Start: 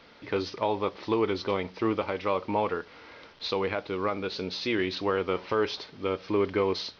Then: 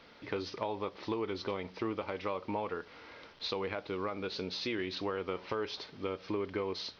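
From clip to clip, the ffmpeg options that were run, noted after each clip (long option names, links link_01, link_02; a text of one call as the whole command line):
ffmpeg -i in.wav -af "acompressor=threshold=-30dB:ratio=3,volume=-3dB" out.wav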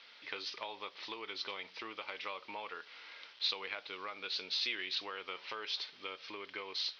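ffmpeg -i in.wav -af "bandpass=frequency=3400:width_type=q:width=1.1:csg=0,volume=5.5dB" out.wav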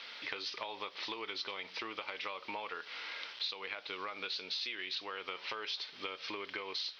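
ffmpeg -i in.wav -af "acompressor=threshold=-48dB:ratio=4,volume=9.5dB" out.wav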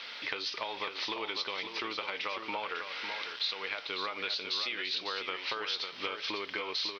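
ffmpeg -i in.wav -af "aecho=1:1:550:0.447,volume=4.5dB" out.wav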